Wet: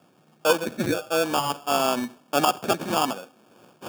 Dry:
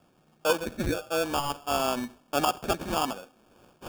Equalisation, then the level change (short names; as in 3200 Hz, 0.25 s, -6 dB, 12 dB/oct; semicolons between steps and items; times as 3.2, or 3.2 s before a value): HPF 120 Hz 24 dB/oct; +4.5 dB